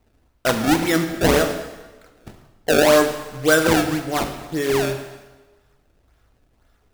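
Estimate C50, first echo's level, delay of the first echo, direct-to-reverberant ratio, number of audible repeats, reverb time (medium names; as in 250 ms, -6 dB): 8.5 dB, no echo, no echo, 6.0 dB, no echo, 1.2 s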